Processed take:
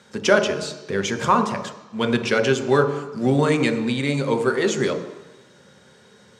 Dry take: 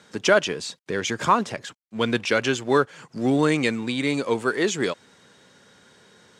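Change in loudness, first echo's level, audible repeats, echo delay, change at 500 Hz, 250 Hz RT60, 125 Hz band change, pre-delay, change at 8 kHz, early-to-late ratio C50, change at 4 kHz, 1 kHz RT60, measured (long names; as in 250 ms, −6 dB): +2.0 dB, no echo audible, no echo audible, no echo audible, +3.0 dB, 1.0 s, +5.5 dB, 3 ms, +0.5 dB, 9.0 dB, +0.5 dB, 1.2 s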